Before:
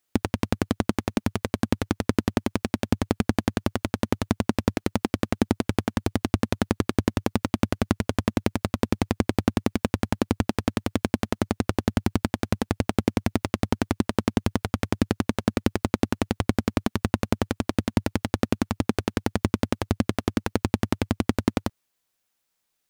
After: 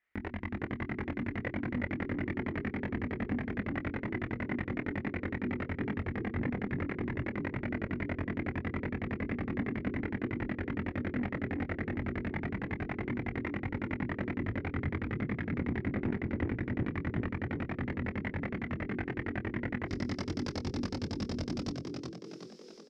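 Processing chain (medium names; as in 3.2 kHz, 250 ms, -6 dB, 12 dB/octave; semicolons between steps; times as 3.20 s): hum notches 60/120/180/240/300/360 Hz; level rider gain up to 17 dB; peak limiter -9.5 dBFS, peak gain reduction 9 dB; level held to a coarse grid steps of 16 dB; chorus voices 6, 1.3 Hz, delay 22 ms, depth 3 ms; one-sided clip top -30 dBFS; resonant low-pass 2 kHz, resonance Q 6.2, from 19.86 s 5.2 kHz; doubling 25 ms -13.5 dB; frequency-shifting echo 371 ms, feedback 51%, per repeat +43 Hz, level -4 dB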